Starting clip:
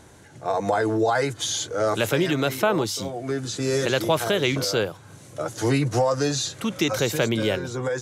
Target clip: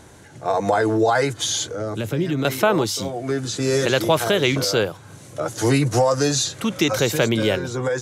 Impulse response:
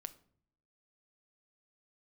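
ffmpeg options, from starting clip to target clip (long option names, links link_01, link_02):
-filter_complex "[0:a]asettb=1/sr,asplit=3[link_01][link_02][link_03];[link_01]atrim=end=1.674[link_04];[link_02]atrim=start=1.67:end=2.45,asetpts=PTS-STARTPTS,afade=type=in:duration=0.004:curve=qsin,afade=type=out:start_time=0.776:duration=0.004:curve=qsin,acrossover=split=340[link_05][link_06];[link_06]acompressor=threshold=-35dB:ratio=5[link_07];[link_05][link_07]amix=inputs=2:normalize=0[link_08];[link_03]atrim=start=2.446[link_09];[link_04][link_08]acrossfade=duration=0.004:curve1=hsin:curve2=qsin[link_10];[link_10][link_09]acrossfade=duration=0.004:curve1=qsin:curve2=hsin,asettb=1/sr,asplit=3[link_11][link_12][link_13];[link_11]atrim=end=5.404[link_14];[link_12]atrim=start=5.4:end=6.44,asetpts=PTS-STARTPTS,afade=type=in:duration=0.004:curve=qsin,afade=type=out:start_time=1.036:duration=0.004:curve=qsin,adynamicequalizer=threshold=0.01:dfrequency=5800:dqfactor=0.7:tfrequency=5800:tqfactor=0.7:attack=5:release=100:ratio=0.375:range=2.5:mode=boostabove:tftype=highshelf[link_15];[link_13]atrim=start=6.436[link_16];[link_14][link_15]acrossfade=duration=0.004:curve1=hsin:curve2=qsin[link_17];[link_17][link_16]acrossfade=duration=0.004:curve1=qsin:curve2=hsin,volume=3.5dB"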